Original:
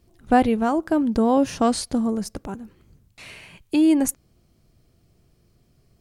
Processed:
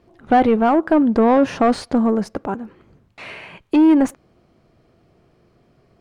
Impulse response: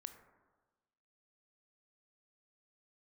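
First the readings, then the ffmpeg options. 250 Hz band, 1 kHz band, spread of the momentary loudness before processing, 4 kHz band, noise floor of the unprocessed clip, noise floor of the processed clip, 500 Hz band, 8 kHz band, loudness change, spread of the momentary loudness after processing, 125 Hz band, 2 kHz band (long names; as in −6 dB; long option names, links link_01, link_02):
+4.0 dB, +5.0 dB, 14 LU, −1.0 dB, −62 dBFS, −59 dBFS, +6.0 dB, can't be measured, +4.5 dB, 15 LU, +3.0 dB, +5.0 dB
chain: -filter_complex "[0:a]asplit=2[link_01][link_02];[link_02]highpass=frequency=720:poles=1,volume=22dB,asoftclip=type=tanh:threshold=-3.5dB[link_03];[link_01][link_03]amix=inputs=2:normalize=0,lowpass=frequency=1100:poles=1,volume=-6dB,highshelf=frequency=4100:gain=-8.5"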